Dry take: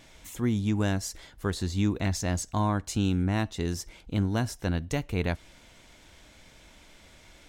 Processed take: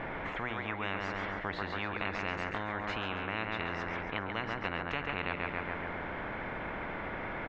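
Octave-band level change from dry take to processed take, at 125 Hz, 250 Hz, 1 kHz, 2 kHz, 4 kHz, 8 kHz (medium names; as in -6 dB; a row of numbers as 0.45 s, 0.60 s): -14.5 dB, -12.0 dB, +1.5 dB, +5.0 dB, -3.0 dB, under -25 dB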